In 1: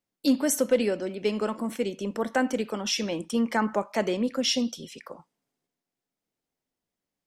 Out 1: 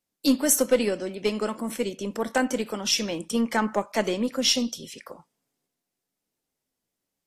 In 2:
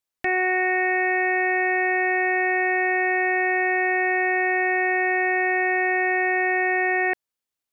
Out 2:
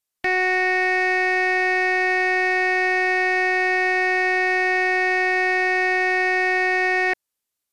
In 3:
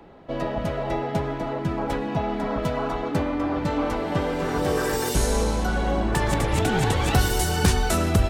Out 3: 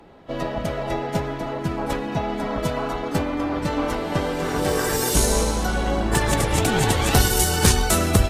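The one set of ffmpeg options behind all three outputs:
-af "aeval=exprs='0.422*(cos(1*acos(clip(val(0)/0.422,-1,1)))-cos(1*PI/2))+0.0473*(cos(2*acos(clip(val(0)/0.422,-1,1)))-cos(2*PI/2))+0.00841*(cos(3*acos(clip(val(0)/0.422,-1,1)))-cos(3*PI/2))+0.0106*(cos(7*acos(clip(val(0)/0.422,-1,1)))-cos(7*PI/2))':c=same,highshelf=f=4.6k:g=7.5,volume=2dB" -ar 32000 -c:a aac -b:a 48k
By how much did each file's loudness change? +2.0, +2.0, +2.5 LU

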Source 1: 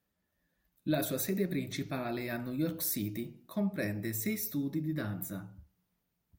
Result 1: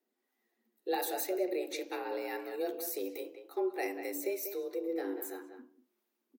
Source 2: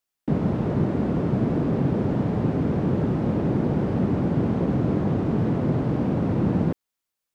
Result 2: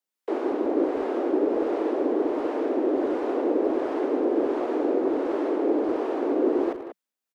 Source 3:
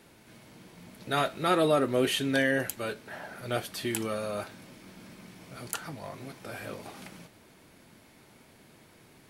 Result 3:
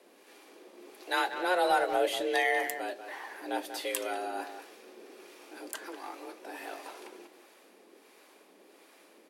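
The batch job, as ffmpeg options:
-filter_complex "[0:a]afreqshift=180,acrossover=split=670[a][b];[a]aeval=exprs='val(0)*(1-0.5/2+0.5/2*cos(2*PI*1.4*n/s))':c=same[c];[b]aeval=exprs='val(0)*(1-0.5/2-0.5/2*cos(2*PI*1.4*n/s))':c=same[d];[c][d]amix=inputs=2:normalize=0,asplit=2[e][f];[f]adelay=190,highpass=300,lowpass=3.4k,asoftclip=type=hard:threshold=-21.5dB,volume=-9dB[g];[e][g]amix=inputs=2:normalize=0"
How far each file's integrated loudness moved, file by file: -2.0, -1.5, -2.0 LU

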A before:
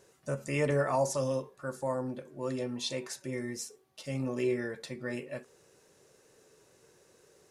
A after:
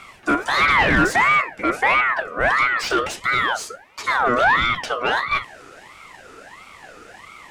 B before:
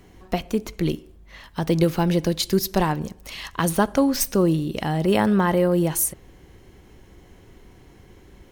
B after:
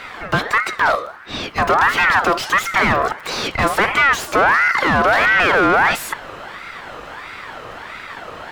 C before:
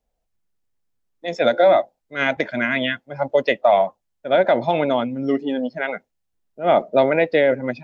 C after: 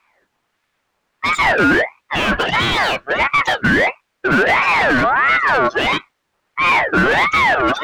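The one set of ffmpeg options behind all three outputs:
-filter_complex "[0:a]asplit=2[a][b];[b]highpass=f=720:p=1,volume=36dB,asoftclip=type=tanh:threshold=-3.5dB[c];[a][c]amix=inputs=2:normalize=0,lowpass=f=1.1k:p=1,volume=-6dB,aeval=exprs='val(0)*sin(2*PI*1300*n/s+1300*0.35/1.5*sin(2*PI*1.5*n/s))':c=same"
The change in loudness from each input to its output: +15.5, +6.5, +4.5 LU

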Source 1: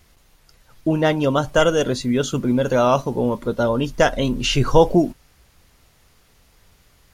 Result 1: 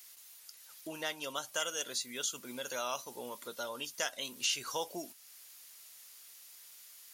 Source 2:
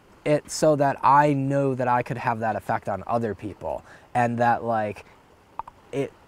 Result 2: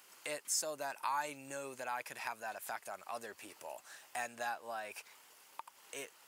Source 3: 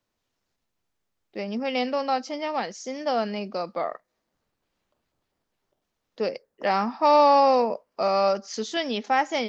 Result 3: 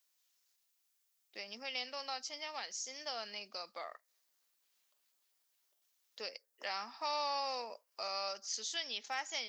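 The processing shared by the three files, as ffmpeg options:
-af "highpass=f=120:p=1,aderivative,acompressor=threshold=-58dB:ratio=1.5,volume=7.5dB"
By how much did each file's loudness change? -18.0, -17.5, -16.0 LU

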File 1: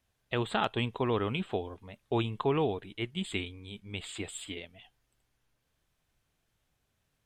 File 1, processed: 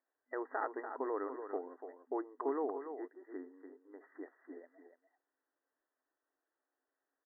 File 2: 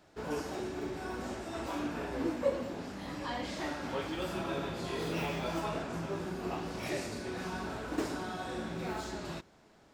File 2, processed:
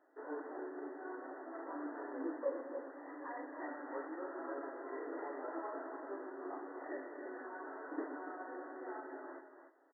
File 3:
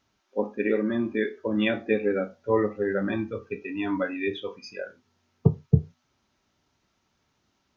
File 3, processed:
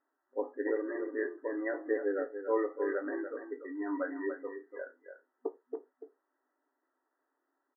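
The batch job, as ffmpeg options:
-filter_complex "[0:a]asplit=2[a][b];[b]adelay=290,highpass=300,lowpass=3.4k,asoftclip=type=hard:threshold=-15dB,volume=-8dB[c];[a][c]amix=inputs=2:normalize=0,afftfilt=real='re*between(b*sr/4096,250,2000)':imag='im*between(b*sr/4096,250,2000)':win_size=4096:overlap=0.75,volume=-7dB"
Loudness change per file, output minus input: -8.0, -8.0, -9.0 LU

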